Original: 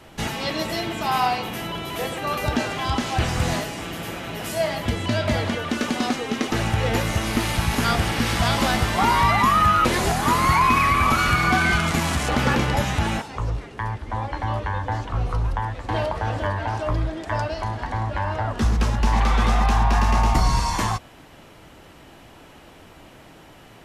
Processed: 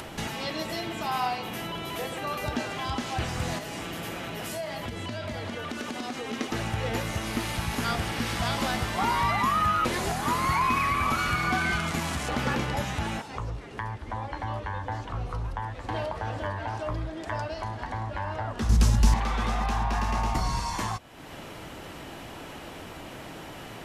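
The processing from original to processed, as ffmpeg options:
-filter_complex "[0:a]asettb=1/sr,asplit=3[s0][s1][s2];[s0]atrim=end=3.584[s3];[s1]atrim=start=3.58:end=6.33,asetpts=PTS-STARTPTS,afade=t=in:d=0.004:c=qsin,afade=t=out:st=2.746:d=0.004:c=qsin,acompressor=threshold=0.0447:ratio=3:attack=3.2:release=140:knee=1:detection=peak[s4];[s2]atrim=start=6.326[s5];[s3][s4]acrossfade=d=0.004:c1=hsin:c2=qsin[s6];[s6][s5]acrossfade=d=0.004:c1=qsin:c2=hsin,asettb=1/sr,asplit=3[s7][s8][s9];[s7]atrim=end=18.694[s10];[s8]atrim=start=18.69:end=19.14,asetpts=PTS-STARTPTS,afade=t=in:d=0.004:c=qsin,afade=t=out:st=0.446:d=0.004:c=qsin,bass=f=250:g=11,treble=f=4000:g=14[s11];[s9]atrim=start=19.136[s12];[s10][s11]acrossfade=d=0.004:c1=hsin:c2=qsin[s13];[s13][s12]acrossfade=d=0.004:c1=qsin:c2=hsin,acompressor=mode=upward:threshold=0.0891:ratio=2.5,lowshelf=f=61:g=-5.5,volume=0.447"

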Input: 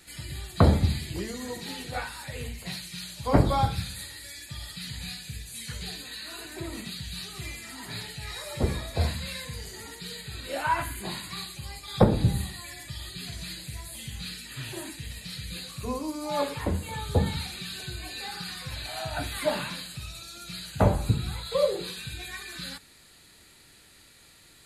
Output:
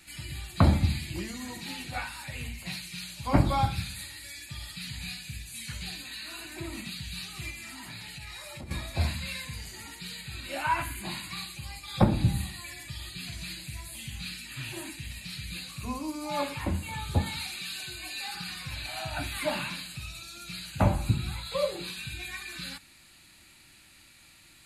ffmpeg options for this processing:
-filter_complex "[0:a]asettb=1/sr,asplit=3[s0][s1][s2];[s0]atrim=end=7.504[s3];[s1]atrim=start=7.5:end=8.71,asetpts=PTS-STARTPTS,afade=t=in:d=0.004:c=qsin,afade=t=out:st=1.206:d=0.004:c=qsin,acompressor=threshold=0.0141:ratio=6:attack=3.2:release=140:knee=1:detection=peak[s4];[s2]atrim=start=8.706[s5];[s3][s4]acrossfade=d=0.004:c1=hsin:c2=qsin[s6];[s6][s5]acrossfade=d=0.004:c1=qsin:c2=hsin,asettb=1/sr,asplit=3[s7][s8][s9];[s7]atrim=end=17.214[s10];[s8]atrim=start=17.21:end=18.35,asetpts=PTS-STARTPTS,afade=t=in:d=0.004:c=qsin,afade=t=out:st=1.136:d=0.004:c=qsin,bass=f=250:g=-10,treble=f=4000:g=3[s11];[s9]atrim=start=18.346[s12];[s10][s11]acrossfade=d=0.004:c1=hsin:c2=qsin[s13];[s13][s12]acrossfade=d=0.004:c1=qsin:c2=hsin,superequalizer=7b=0.282:8b=0.708:12b=1.78,volume=0.841"

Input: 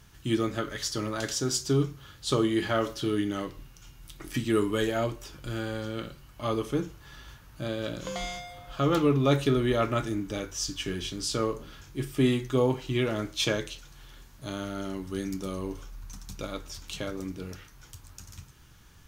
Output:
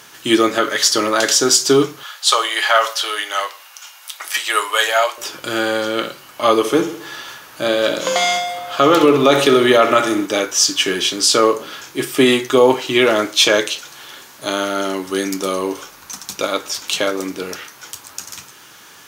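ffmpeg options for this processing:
-filter_complex "[0:a]asettb=1/sr,asplit=3[s0][s1][s2];[s0]atrim=end=2.034[s3];[s1]atrim=start=2.03:end=5.18,asetpts=PTS-STARTPTS,afade=t=in:d=0.004:c=qsin,afade=t=out:st=3.146:d=0.004:c=qsin,highpass=f=680:w=0.5412,highpass=f=680:w=1.3066[s4];[s2]atrim=start=5.176[s5];[s3][s4]acrossfade=d=0.004:c1=hsin:c2=qsin[s6];[s6][s5]acrossfade=d=0.004:c1=qsin:c2=hsin,asettb=1/sr,asplit=3[s7][s8][s9];[s7]atrim=end=6.584[s10];[s8]atrim=start=6.58:end=10.26,asetpts=PTS-STARTPTS,afade=t=in:d=0.004:c=qsin,afade=t=out:st=3.676:d=0.004:c=qsin,aecho=1:1:65|130|195|260|325|390:0.251|0.136|0.0732|0.0396|0.0214|0.0115,atrim=end_sample=162288[s11];[s9]atrim=start=10.256[s12];[s10][s11]acrossfade=d=0.004:c1=hsin:c2=qsin[s13];[s13][s12]acrossfade=d=0.004:c1=qsin:c2=hsin,highpass=420,alimiter=level_in=9.44:limit=0.891:release=50:level=0:latency=1,volume=0.891"

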